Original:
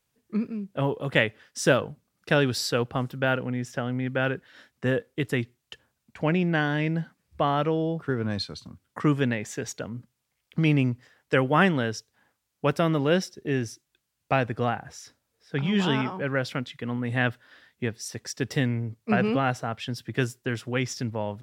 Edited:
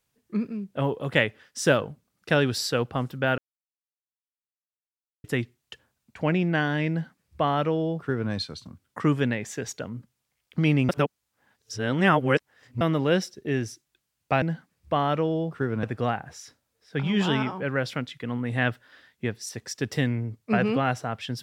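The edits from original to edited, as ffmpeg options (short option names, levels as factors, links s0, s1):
-filter_complex "[0:a]asplit=7[s0][s1][s2][s3][s4][s5][s6];[s0]atrim=end=3.38,asetpts=PTS-STARTPTS,afade=t=out:st=3.376:d=0.004:c=hsin[s7];[s1]atrim=start=3.38:end=5.24,asetpts=PTS-STARTPTS,volume=0[s8];[s2]atrim=start=5.24:end=10.892,asetpts=PTS-STARTPTS,afade=t=in:d=0.004:c=hsin[s9];[s3]atrim=start=10.888:end=12.812,asetpts=PTS-STARTPTS,areverse[s10];[s4]atrim=start=12.808:end=14.422[s11];[s5]atrim=start=6.898:end=8.312[s12];[s6]atrim=start=14.418[s13];[s7][s8][s9]concat=n=3:v=0:a=1[s14];[s14][s10]acrossfade=d=0.004:c1=hsin:c2=hsin[s15];[s15][s11]acrossfade=d=0.004:c1=hsin:c2=hsin[s16];[s16][s12]acrossfade=d=0.004:c1=hsin:c2=hsin[s17];[s17][s13]acrossfade=d=0.004:c1=hsin:c2=hsin"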